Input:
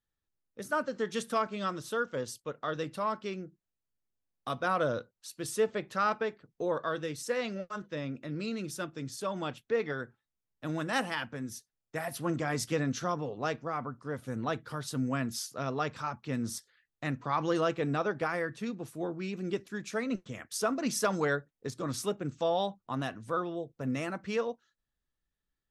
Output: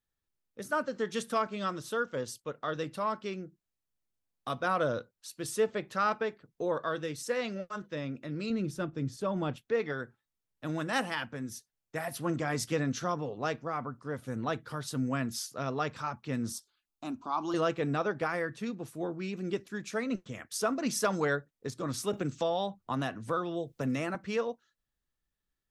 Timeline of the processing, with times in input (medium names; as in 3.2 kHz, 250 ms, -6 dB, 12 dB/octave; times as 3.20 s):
8.50–9.56 s: tilt EQ -2.5 dB/octave
16.52–17.54 s: static phaser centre 500 Hz, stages 6
22.13–24.15 s: three bands compressed up and down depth 70%